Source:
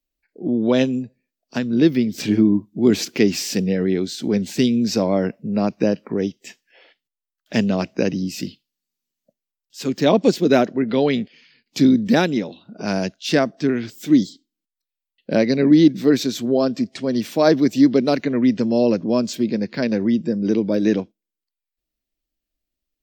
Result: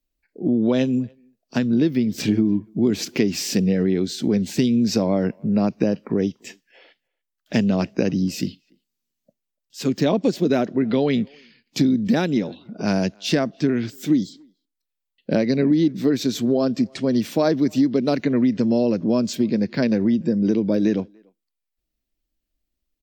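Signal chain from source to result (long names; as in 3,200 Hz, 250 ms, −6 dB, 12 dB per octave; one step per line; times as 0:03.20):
low-shelf EQ 270 Hz +6 dB
downward compressor, threshold −15 dBFS, peak gain reduction 10 dB
far-end echo of a speakerphone 290 ms, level −29 dB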